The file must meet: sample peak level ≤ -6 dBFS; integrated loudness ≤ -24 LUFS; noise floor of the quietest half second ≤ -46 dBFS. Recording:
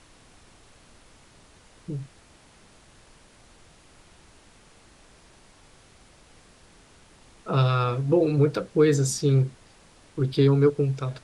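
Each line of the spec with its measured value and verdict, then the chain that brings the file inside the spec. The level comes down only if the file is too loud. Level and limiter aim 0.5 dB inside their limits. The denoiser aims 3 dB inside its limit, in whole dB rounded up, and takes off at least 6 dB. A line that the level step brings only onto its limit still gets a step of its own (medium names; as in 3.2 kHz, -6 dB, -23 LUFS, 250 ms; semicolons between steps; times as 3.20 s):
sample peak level -8.5 dBFS: pass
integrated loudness -23.5 LUFS: fail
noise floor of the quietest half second -54 dBFS: pass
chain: trim -1 dB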